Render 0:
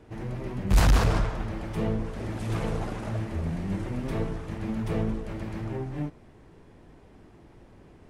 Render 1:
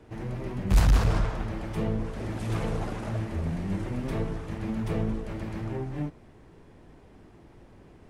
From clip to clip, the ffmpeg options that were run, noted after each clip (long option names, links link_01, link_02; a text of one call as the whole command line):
ffmpeg -i in.wav -filter_complex "[0:a]acrossover=split=190[link_01][link_02];[link_02]acompressor=threshold=-28dB:ratio=6[link_03];[link_01][link_03]amix=inputs=2:normalize=0" out.wav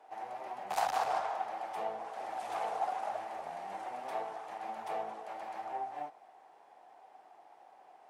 ffmpeg -i in.wav -af "highpass=frequency=760:width_type=q:width=8.3,volume=-7dB" out.wav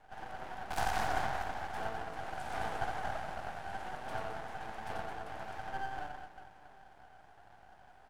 ffmpeg -i in.wav -af "aecho=1:1:90|216|392.4|639.4|985.1:0.631|0.398|0.251|0.158|0.1,aeval=exprs='max(val(0),0)':channel_layout=same,volume=1dB" out.wav